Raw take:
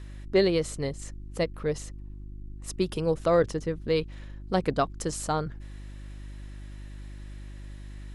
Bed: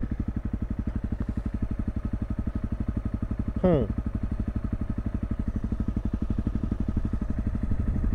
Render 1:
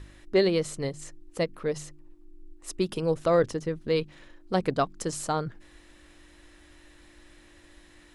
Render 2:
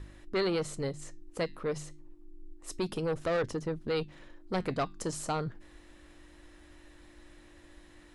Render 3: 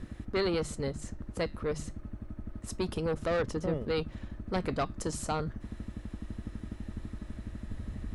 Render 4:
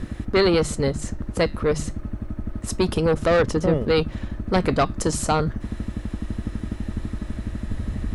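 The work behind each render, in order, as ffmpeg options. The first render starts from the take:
-af "bandreject=f=50:t=h:w=4,bandreject=f=100:t=h:w=4,bandreject=f=150:t=h:w=4,bandreject=f=200:t=h:w=4,bandreject=f=250:t=h:w=4"
-filter_complex "[0:a]acrossover=split=1400[a][b];[a]asoftclip=type=tanh:threshold=-27dB[c];[b]flanger=delay=5.1:depth=10:regen=74:speed=0.28:shape=triangular[d];[c][d]amix=inputs=2:normalize=0"
-filter_complex "[1:a]volume=-12.5dB[a];[0:a][a]amix=inputs=2:normalize=0"
-af "volume=11.5dB"

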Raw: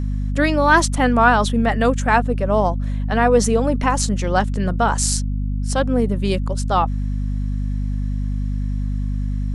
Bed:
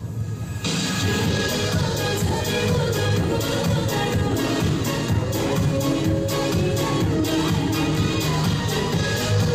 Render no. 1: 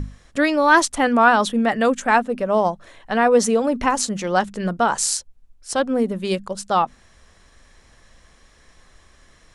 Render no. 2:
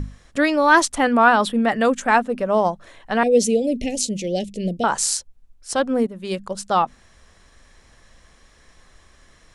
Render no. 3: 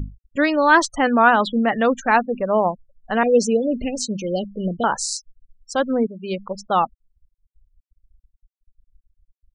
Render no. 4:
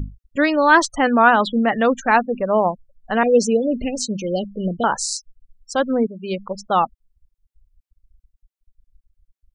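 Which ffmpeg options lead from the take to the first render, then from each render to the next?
-af "bandreject=f=50:t=h:w=6,bandreject=f=100:t=h:w=6,bandreject=f=150:t=h:w=6,bandreject=f=200:t=h:w=6,bandreject=f=250:t=h:w=6"
-filter_complex "[0:a]asettb=1/sr,asplit=3[a][b][c];[a]atrim=end=1.074[d];[b]atrim=start=1.07:end=1.68,asetpts=PTS-STARTPTS,afade=t=in:d=0.004:c=qsin,afade=t=out:st=0.606:d=0.004:c=qsin,equalizer=f=6.3k:t=o:w=0.3:g=-10[e];[c]atrim=start=1.676[f];[d][e]acrossfade=d=0.004:c1=hsin:c2=qsin[g];[g][f]acrossfade=d=0.004:c1=qsin:c2=hsin,asettb=1/sr,asplit=3[h][i][j];[h]atrim=end=3.234[k];[i]atrim=start=3.23:end=4.84,asetpts=PTS-STARTPTS,afade=t=in:d=0.004:c=qsin,afade=t=out:st=1.606:d=0.004:c=qsin,asuperstop=centerf=1200:order=8:qfactor=0.7[l];[j]atrim=start=4.836[m];[k][l]acrossfade=d=0.004:c1=hsin:c2=qsin[n];[n][m]acrossfade=d=0.004:c1=qsin:c2=hsin,asplit=2[o][p];[o]atrim=end=6.07,asetpts=PTS-STARTPTS,afade=t=out:st=6.066:d=0.004:c=hsin:silence=0.223872[q];[p]atrim=start=6.07,asetpts=PTS-STARTPTS,afade=t=in:d=0.45:silence=0.223872[r];[q][r]concat=n=2:v=0:a=1"
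-af "lowpass=6.6k,afftfilt=real='re*gte(hypot(re,im),0.0355)':imag='im*gte(hypot(re,im),0.0355)':win_size=1024:overlap=0.75"
-af "volume=1dB"

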